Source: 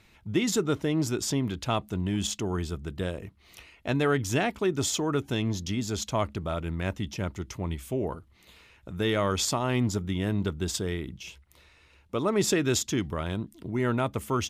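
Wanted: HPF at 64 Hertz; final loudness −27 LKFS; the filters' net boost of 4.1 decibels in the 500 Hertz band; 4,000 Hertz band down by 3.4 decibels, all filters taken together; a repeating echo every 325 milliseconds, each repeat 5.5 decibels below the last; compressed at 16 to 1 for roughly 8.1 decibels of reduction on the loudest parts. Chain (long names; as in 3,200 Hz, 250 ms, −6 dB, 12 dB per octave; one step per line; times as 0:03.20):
high-pass filter 64 Hz
parametric band 500 Hz +5.5 dB
parametric band 4,000 Hz −4.5 dB
downward compressor 16 to 1, threshold −25 dBFS
repeating echo 325 ms, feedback 53%, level −5.5 dB
level +4 dB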